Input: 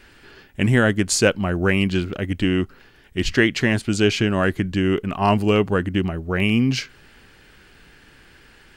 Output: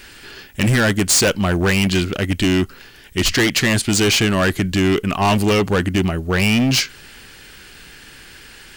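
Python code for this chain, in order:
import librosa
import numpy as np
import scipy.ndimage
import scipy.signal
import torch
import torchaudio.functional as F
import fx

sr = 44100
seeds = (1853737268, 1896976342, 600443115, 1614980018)

y = fx.high_shelf(x, sr, hz=2900.0, db=12.0)
y = np.clip(10.0 ** (17.5 / 20.0) * y, -1.0, 1.0) / 10.0 ** (17.5 / 20.0)
y = F.gain(torch.from_numpy(y), 5.0).numpy()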